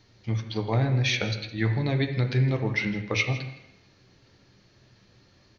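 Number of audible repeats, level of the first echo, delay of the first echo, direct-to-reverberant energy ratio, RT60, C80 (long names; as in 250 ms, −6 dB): 1, −17.0 dB, 163 ms, 3.5 dB, 0.85 s, 10.0 dB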